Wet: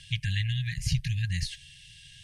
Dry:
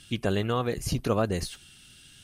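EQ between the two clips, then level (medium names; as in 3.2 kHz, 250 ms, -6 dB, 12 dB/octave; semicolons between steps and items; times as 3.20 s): brick-wall FIR band-stop 170–1600 Hz; distance through air 60 m; +4.0 dB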